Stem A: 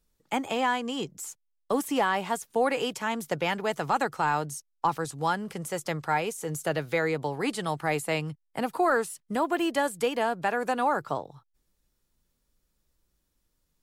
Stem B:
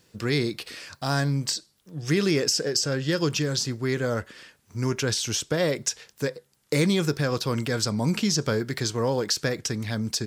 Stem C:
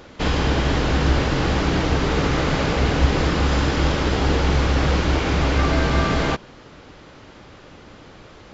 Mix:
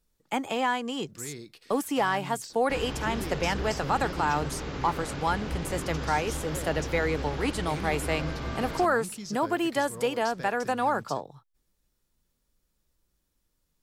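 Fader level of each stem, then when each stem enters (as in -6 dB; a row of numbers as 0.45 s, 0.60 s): -0.5 dB, -16.5 dB, -15.5 dB; 0.00 s, 0.95 s, 2.50 s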